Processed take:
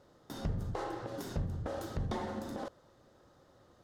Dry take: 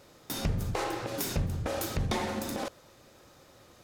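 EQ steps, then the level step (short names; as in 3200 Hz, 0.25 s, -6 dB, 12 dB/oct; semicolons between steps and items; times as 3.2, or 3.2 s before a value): bell 2400 Hz -11 dB 0.37 oct; high shelf 3200 Hz -9.5 dB; high shelf 11000 Hz -8.5 dB; -5.0 dB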